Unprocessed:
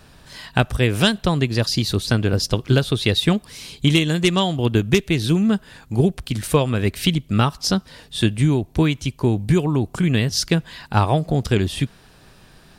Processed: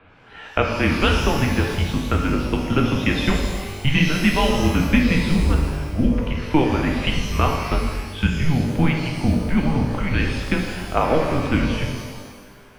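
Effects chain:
single-sideband voice off tune −150 Hz 190–3,000 Hz
reverb with rising layers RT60 1.4 s, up +12 semitones, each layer −8 dB, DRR 0.5 dB

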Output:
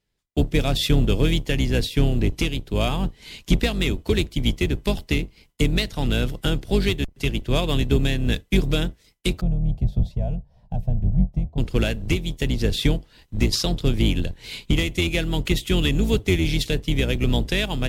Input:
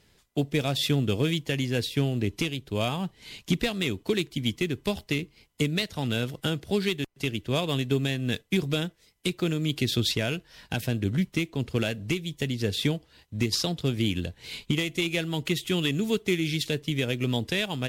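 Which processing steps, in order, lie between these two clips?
sub-octave generator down 2 octaves, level +3 dB
noise gate with hold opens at −47 dBFS
0:09.41–0:11.58: drawn EQ curve 180 Hz 0 dB, 330 Hz −20 dB, 710 Hz −1 dB, 1,500 Hz −29 dB
level +3.5 dB

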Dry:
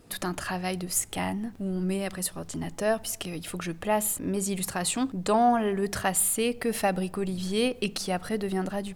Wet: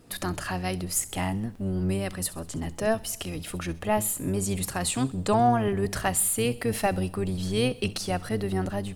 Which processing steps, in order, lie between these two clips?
sub-octave generator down 1 octave, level −2 dB
delay with a high-pass on its return 65 ms, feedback 51%, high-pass 2,800 Hz, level −16.5 dB

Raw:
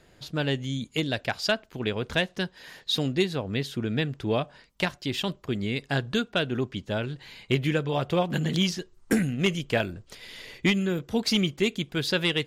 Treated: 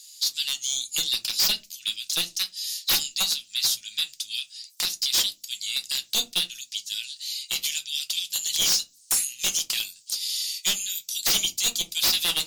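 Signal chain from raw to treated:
inverse Chebyshev high-pass filter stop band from 1,100 Hz, stop band 70 dB
dynamic equaliser 8,500 Hz, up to −3 dB, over −57 dBFS, Q 1.8
in parallel at −1 dB: brickwall limiter −31 dBFS, peak gain reduction 11 dB
on the sum: sine wavefolder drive 15 dB, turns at −17.5 dBFS
convolution reverb RT60 0.25 s, pre-delay 5 ms, DRR 5 dB

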